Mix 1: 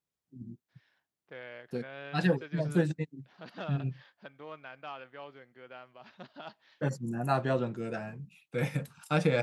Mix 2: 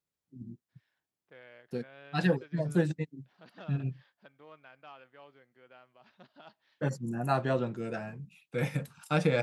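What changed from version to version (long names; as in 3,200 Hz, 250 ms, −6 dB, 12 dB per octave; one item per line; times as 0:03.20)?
second voice −8.0 dB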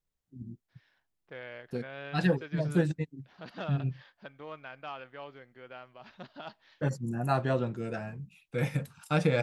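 second voice +9.5 dB
master: remove high-pass filter 120 Hz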